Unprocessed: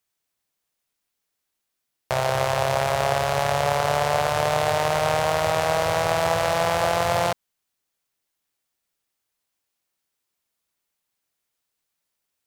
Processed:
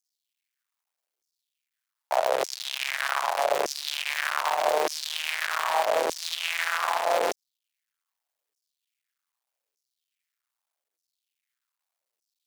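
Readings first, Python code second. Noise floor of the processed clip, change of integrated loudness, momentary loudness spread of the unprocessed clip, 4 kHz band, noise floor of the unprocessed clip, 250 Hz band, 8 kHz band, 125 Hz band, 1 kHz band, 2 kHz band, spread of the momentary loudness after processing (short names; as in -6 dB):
under -85 dBFS, -4.5 dB, 2 LU, -0.5 dB, -80 dBFS, -11.0 dB, -2.5 dB, under -30 dB, -5.0 dB, -1.5 dB, 5 LU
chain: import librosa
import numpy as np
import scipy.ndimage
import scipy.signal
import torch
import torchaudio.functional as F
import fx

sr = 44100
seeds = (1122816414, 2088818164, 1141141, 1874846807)

y = fx.cycle_switch(x, sr, every=2, mode='muted')
y = fx.filter_lfo_highpass(y, sr, shape='saw_down', hz=0.82, low_hz=390.0, high_hz=6000.0, q=3.2)
y = F.gain(torch.from_numpy(y), -4.0).numpy()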